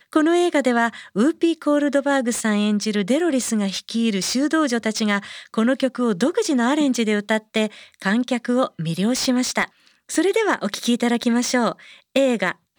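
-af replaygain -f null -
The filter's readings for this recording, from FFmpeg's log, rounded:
track_gain = +1.5 dB
track_peak = 0.446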